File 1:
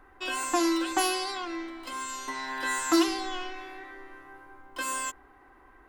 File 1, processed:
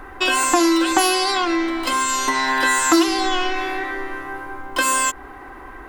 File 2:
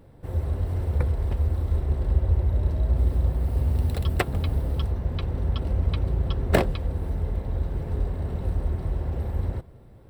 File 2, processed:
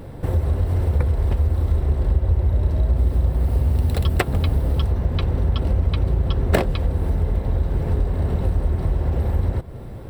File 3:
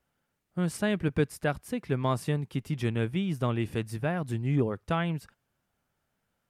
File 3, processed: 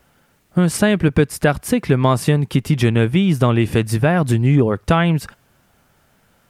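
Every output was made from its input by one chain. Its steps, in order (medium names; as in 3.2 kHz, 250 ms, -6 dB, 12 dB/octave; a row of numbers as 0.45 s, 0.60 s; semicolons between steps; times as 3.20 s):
compression 2.5:1, threshold -36 dBFS; peak normalisation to -2 dBFS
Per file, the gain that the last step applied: +18.5 dB, +15.0 dB, +21.0 dB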